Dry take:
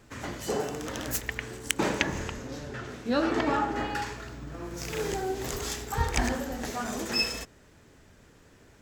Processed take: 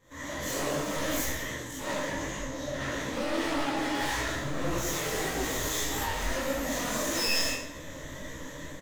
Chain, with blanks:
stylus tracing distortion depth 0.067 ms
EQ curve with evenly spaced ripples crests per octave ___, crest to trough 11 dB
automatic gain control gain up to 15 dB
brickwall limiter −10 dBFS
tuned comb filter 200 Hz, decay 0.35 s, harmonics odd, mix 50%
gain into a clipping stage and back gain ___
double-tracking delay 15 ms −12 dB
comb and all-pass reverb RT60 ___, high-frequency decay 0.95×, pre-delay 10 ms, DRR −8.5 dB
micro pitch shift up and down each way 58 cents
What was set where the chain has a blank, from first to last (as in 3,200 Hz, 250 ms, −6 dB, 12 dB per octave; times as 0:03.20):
1.1, 34.5 dB, 0.67 s